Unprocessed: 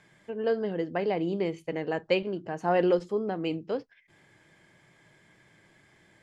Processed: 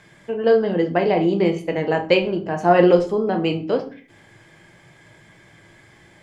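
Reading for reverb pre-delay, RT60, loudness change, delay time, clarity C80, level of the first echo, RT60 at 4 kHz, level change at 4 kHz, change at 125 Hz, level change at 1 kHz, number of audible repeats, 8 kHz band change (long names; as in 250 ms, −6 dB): 6 ms, 0.45 s, +10.5 dB, no echo audible, 17.5 dB, no echo audible, 0.30 s, +10.5 dB, +11.5 dB, +11.0 dB, no echo audible, can't be measured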